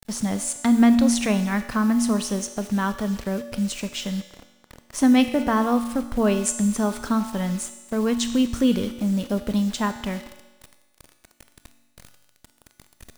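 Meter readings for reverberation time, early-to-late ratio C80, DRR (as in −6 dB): 1.2 s, 12.0 dB, 9.0 dB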